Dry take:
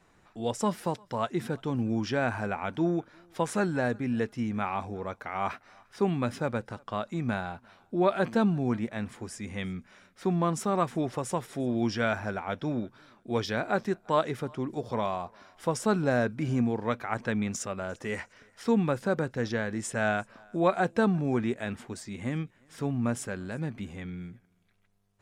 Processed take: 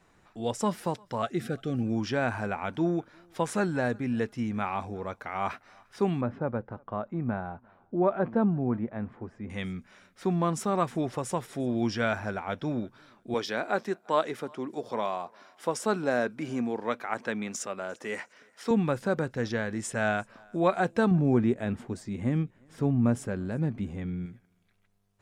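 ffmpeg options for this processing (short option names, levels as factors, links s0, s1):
-filter_complex "[0:a]asettb=1/sr,asplit=3[s0][s1][s2];[s0]atrim=end=1.224[s3];[s1]atrim=start=1.22:end=1.84,asetpts=PTS-STARTPTS,afade=t=in:d=0.004:c=qsin,afade=t=out:st=0.616:d=0.004:c=qsin,asuperstop=centerf=960:order=20:qfactor=3.2[s4];[s2]atrim=start=1.836[s5];[s3][s4]acrossfade=d=0.004:c1=hsin:c2=qsin[s6];[s6][s5]acrossfade=d=0.004:c1=qsin:c2=hsin,asettb=1/sr,asplit=3[s7][s8][s9];[s7]atrim=end=6.214[s10];[s8]atrim=start=6.21:end=9.5,asetpts=PTS-STARTPTS,afade=t=in:d=0.004:c=qsin,afade=t=out:st=3.286:d=0.004:c=qsin,lowpass=1200[s11];[s9]atrim=start=9.496[s12];[s10][s11]acrossfade=d=0.004:c1=hsin:c2=qsin[s13];[s13][s12]acrossfade=d=0.004:c1=qsin:c2=hsin,asettb=1/sr,asplit=3[s14][s15][s16];[s14]atrim=end=13.344[s17];[s15]atrim=start=13.34:end=18.71,asetpts=PTS-STARTPTS,afade=t=in:d=0.004:c=qsin,afade=t=out:st=5.366:d=0.004:c=qsin,highpass=250[s18];[s16]atrim=start=18.706[s19];[s17][s18]acrossfade=d=0.004:c1=hsin:c2=qsin[s20];[s20][s19]acrossfade=d=0.004:c1=qsin:c2=hsin,asettb=1/sr,asplit=3[s21][s22][s23];[s21]atrim=end=21.114[s24];[s22]atrim=start=21.11:end=24.26,asetpts=PTS-STARTPTS,afade=t=in:d=0.004:c=qsin,afade=t=out:st=3.146:d=0.004:c=qsin,tiltshelf=f=900:g=5.5[s25];[s23]atrim=start=24.256[s26];[s24][s25]acrossfade=d=0.004:c1=hsin:c2=qsin[s27];[s27][s26]acrossfade=d=0.004:c1=qsin:c2=hsin"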